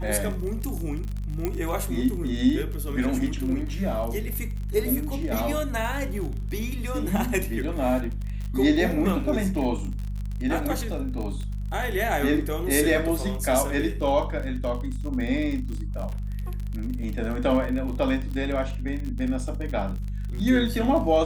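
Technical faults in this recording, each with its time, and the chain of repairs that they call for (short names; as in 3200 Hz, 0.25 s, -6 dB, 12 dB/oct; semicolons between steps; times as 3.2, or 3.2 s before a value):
crackle 44/s -31 dBFS
hum 50 Hz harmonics 4 -30 dBFS
1.45 pop -13 dBFS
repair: de-click; de-hum 50 Hz, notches 4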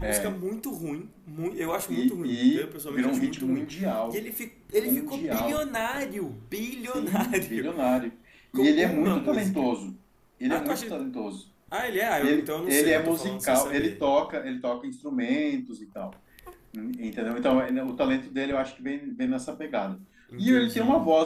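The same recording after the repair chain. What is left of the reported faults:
none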